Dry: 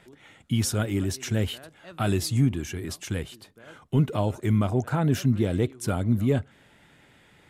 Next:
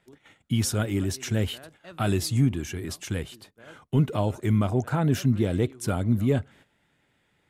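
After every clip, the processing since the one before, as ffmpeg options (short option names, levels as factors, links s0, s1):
-af "agate=range=0.251:threshold=0.00282:ratio=16:detection=peak"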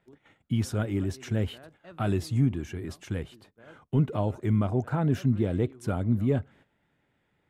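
-af "highshelf=f=3000:g=-12,volume=0.794"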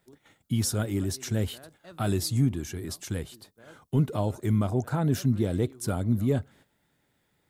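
-af "aexciter=amount=3.5:drive=5.2:freq=3800"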